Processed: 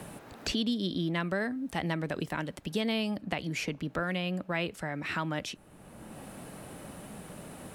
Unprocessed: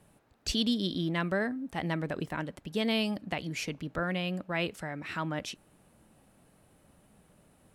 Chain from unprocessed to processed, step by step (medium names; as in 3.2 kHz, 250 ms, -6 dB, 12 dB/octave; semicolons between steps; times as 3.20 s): three bands compressed up and down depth 70%